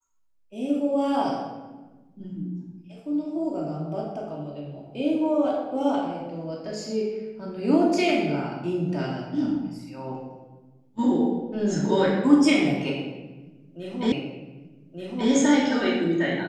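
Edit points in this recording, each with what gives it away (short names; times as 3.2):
14.12 repeat of the last 1.18 s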